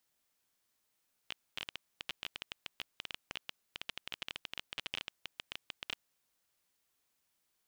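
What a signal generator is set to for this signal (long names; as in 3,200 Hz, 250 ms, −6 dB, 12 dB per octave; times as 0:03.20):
Geiger counter clicks 15 per second −21.5 dBFS 4.64 s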